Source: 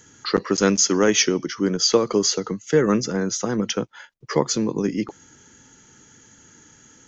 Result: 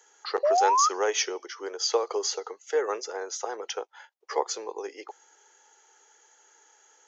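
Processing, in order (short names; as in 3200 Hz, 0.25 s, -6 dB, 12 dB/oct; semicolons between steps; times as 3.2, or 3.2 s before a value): elliptic high-pass 410 Hz, stop band 60 dB; bell 800 Hz +11.5 dB 0.4 oct; painted sound rise, 0.43–0.89, 560–1300 Hz -14 dBFS; gain -7.5 dB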